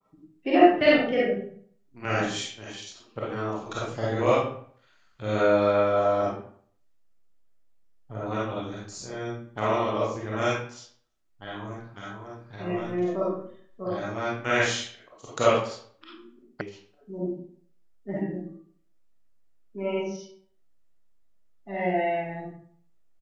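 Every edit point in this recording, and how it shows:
16.61 sound cut off

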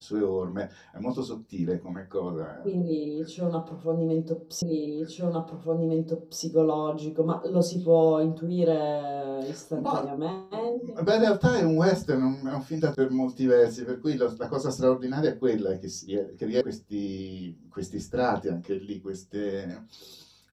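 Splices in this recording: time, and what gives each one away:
4.62 repeat of the last 1.81 s
12.95 sound cut off
16.61 sound cut off

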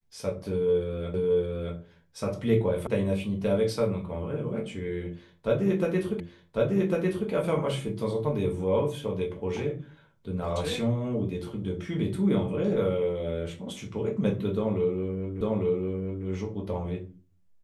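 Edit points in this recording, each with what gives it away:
1.14 repeat of the last 0.62 s
2.87 sound cut off
6.2 repeat of the last 1.1 s
15.41 repeat of the last 0.85 s

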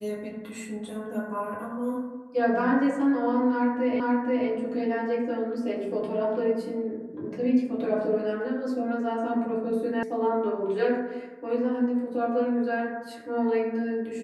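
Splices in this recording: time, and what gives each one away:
4 repeat of the last 0.48 s
10.03 sound cut off

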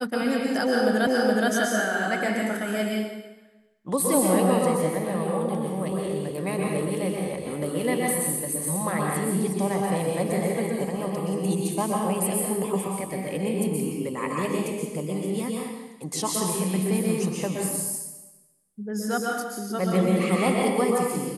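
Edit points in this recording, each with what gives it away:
1.07 repeat of the last 0.42 s

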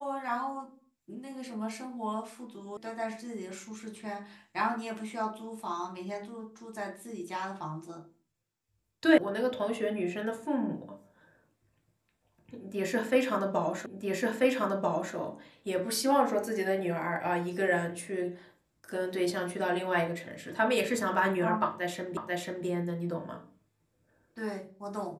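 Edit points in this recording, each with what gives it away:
2.77 sound cut off
9.18 sound cut off
13.86 repeat of the last 1.29 s
22.17 repeat of the last 0.49 s

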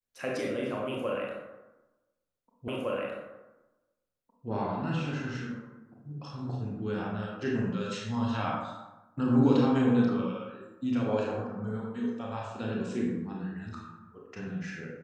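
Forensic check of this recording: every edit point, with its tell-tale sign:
2.68 repeat of the last 1.81 s

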